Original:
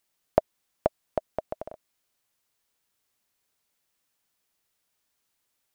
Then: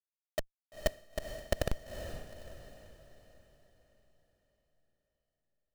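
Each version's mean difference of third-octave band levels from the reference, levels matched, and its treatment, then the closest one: 15.5 dB: high-pass 75 Hz 12 dB/octave; Schmitt trigger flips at -33 dBFS; tremolo saw down 1.4 Hz, depth 100%; on a send: echo that smears into a reverb 461 ms, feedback 46%, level -9 dB; on the sum: trim +16.5 dB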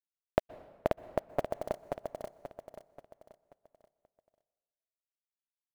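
7.5 dB: compression 2.5:1, threshold -27 dBFS, peak gain reduction 9 dB; bit crusher 8-bit; feedback delay 533 ms, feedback 39%, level -3.5 dB; plate-style reverb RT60 1.3 s, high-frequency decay 0.75×, pre-delay 110 ms, DRR 18.5 dB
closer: second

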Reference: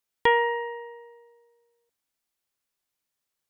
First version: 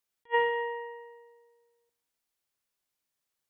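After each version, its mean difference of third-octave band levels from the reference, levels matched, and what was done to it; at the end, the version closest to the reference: 4.0 dB: plate-style reverb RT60 0.86 s, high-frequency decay 0.9×, pre-delay 115 ms, DRR 17.5 dB; attacks held to a fixed rise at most 590 dB/s; trim -1.5 dB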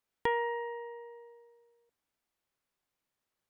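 1.0 dB: treble shelf 3 kHz -10.5 dB; compression 1.5:1, threshold -52 dBFS, peak gain reduction 12 dB; trim +3 dB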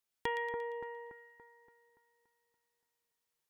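6.0 dB: compression 2:1, threshold -39 dBFS, peak gain reduction 12.5 dB; on a send: two-band feedback delay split 1.7 kHz, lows 286 ms, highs 116 ms, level -6 dB; on the sum: trim -4 dB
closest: second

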